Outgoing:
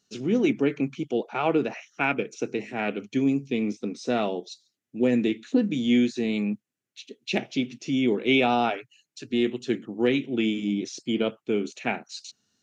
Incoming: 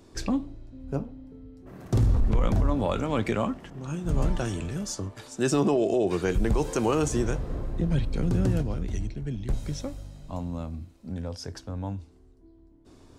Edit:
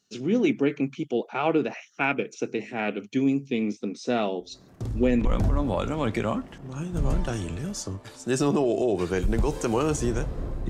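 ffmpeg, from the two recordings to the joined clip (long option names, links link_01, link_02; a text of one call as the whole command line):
ffmpeg -i cue0.wav -i cue1.wav -filter_complex "[1:a]asplit=2[link_01][link_02];[0:a]apad=whole_dur=10.69,atrim=end=10.69,atrim=end=5.252[link_03];[link_02]atrim=start=2.368:end=7.81[link_04];[link_01]atrim=start=1.52:end=2.37,asetpts=PTS-STARTPTS,volume=-9.5dB,afade=type=in:duration=0.004:curve=hsin,afade=type=out:start_time=0.846:duration=0.004:curve=hsin,adelay=4400[link_05];[link_03][link_04]acrossfade=duration=0.004:curve1=hsin:curve2=hsin[link_06];[link_06][link_05]amix=inputs=2:normalize=0" out.wav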